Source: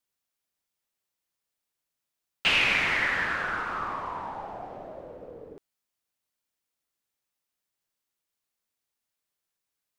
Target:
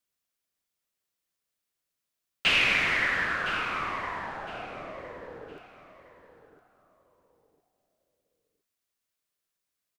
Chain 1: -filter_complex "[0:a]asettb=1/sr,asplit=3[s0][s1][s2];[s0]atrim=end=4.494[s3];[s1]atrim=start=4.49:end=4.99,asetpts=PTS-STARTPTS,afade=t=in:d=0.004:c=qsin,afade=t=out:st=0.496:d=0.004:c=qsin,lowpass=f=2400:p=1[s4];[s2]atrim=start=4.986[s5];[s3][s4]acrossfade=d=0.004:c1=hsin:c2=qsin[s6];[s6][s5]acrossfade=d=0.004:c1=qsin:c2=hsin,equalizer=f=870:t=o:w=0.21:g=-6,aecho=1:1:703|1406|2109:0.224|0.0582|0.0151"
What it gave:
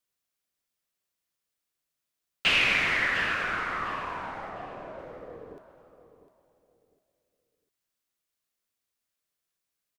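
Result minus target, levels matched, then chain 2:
echo 308 ms early
-filter_complex "[0:a]asettb=1/sr,asplit=3[s0][s1][s2];[s0]atrim=end=4.494[s3];[s1]atrim=start=4.49:end=4.99,asetpts=PTS-STARTPTS,afade=t=in:d=0.004:c=qsin,afade=t=out:st=0.496:d=0.004:c=qsin,lowpass=f=2400:p=1[s4];[s2]atrim=start=4.986[s5];[s3][s4]acrossfade=d=0.004:c1=hsin:c2=qsin[s6];[s6][s5]acrossfade=d=0.004:c1=qsin:c2=hsin,equalizer=f=870:t=o:w=0.21:g=-6,aecho=1:1:1011|2022|3033:0.224|0.0582|0.0151"

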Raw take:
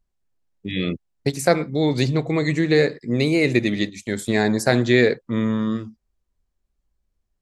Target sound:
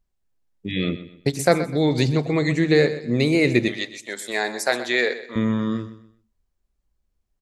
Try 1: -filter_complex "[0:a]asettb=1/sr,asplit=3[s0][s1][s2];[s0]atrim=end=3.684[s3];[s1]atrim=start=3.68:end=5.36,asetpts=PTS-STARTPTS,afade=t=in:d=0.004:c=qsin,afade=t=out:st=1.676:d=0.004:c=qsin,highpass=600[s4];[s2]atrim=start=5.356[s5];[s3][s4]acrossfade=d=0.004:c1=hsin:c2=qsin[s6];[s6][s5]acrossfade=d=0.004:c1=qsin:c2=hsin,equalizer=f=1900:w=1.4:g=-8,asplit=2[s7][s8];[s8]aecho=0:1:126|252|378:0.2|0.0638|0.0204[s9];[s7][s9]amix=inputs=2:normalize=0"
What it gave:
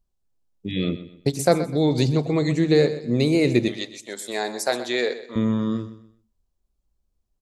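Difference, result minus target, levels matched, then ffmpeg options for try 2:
2 kHz band -6.0 dB
-filter_complex "[0:a]asettb=1/sr,asplit=3[s0][s1][s2];[s0]atrim=end=3.684[s3];[s1]atrim=start=3.68:end=5.36,asetpts=PTS-STARTPTS,afade=t=in:d=0.004:c=qsin,afade=t=out:st=1.676:d=0.004:c=qsin,highpass=600[s4];[s2]atrim=start=5.356[s5];[s3][s4]acrossfade=d=0.004:c1=hsin:c2=qsin[s6];[s6][s5]acrossfade=d=0.004:c1=qsin:c2=hsin,asplit=2[s7][s8];[s8]aecho=0:1:126|252|378:0.2|0.0638|0.0204[s9];[s7][s9]amix=inputs=2:normalize=0"

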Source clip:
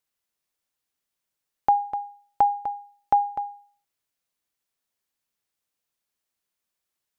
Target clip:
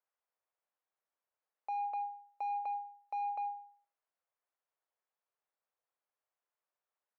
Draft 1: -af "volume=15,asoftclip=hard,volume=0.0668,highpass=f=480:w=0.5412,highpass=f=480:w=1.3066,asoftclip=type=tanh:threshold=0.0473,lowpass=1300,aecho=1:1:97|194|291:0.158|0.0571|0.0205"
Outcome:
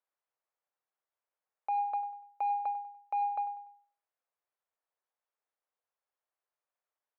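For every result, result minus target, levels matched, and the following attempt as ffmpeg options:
echo-to-direct +8.5 dB; overload inside the chain: distortion -5 dB
-af "volume=15,asoftclip=hard,volume=0.0668,highpass=f=480:w=0.5412,highpass=f=480:w=1.3066,asoftclip=type=tanh:threshold=0.0473,lowpass=1300,aecho=1:1:97|194:0.0596|0.0214"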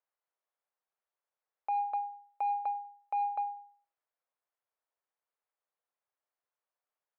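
overload inside the chain: distortion -5 dB
-af "volume=44.7,asoftclip=hard,volume=0.0224,highpass=f=480:w=0.5412,highpass=f=480:w=1.3066,asoftclip=type=tanh:threshold=0.0473,lowpass=1300,aecho=1:1:97|194:0.0596|0.0214"

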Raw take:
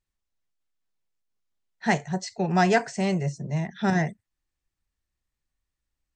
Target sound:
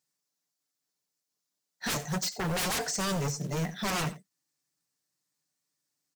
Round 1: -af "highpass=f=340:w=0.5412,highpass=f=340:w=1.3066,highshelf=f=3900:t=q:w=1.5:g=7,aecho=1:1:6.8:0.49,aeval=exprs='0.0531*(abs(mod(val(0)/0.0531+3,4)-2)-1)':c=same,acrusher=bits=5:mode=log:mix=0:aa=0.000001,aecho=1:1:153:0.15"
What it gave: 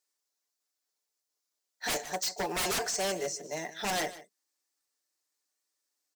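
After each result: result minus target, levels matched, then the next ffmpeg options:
echo 64 ms late; 125 Hz band -14.0 dB
-af "highpass=f=340:w=0.5412,highpass=f=340:w=1.3066,highshelf=f=3900:t=q:w=1.5:g=7,aecho=1:1:6.8:0.49,aeval=exprs='0.0531*(abs(mod(val(0)/0.0531+3,4)-2)-1)':c=same,acrusher=bits=5:mode=log:mix=0:aa=0.000001,aecho=1:1:89:0.15"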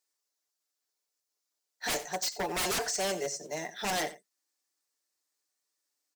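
125 Hz band -14.0 dB
-af "highpass=f=150:w=0.5412,highpass=f=150:w=1.3066,highshelf=f=3900:t=q:w=1.5:g=7,aecho=1:1:6.8:0.49,aeval=exprs='0.0531*(abs(mod(val(0)/0.0531+3,4)-2)-1)':c=same,acrusher=bits=5:mode=log:mix=0:aa=0.000001,aecho=1:1:89:0.15"

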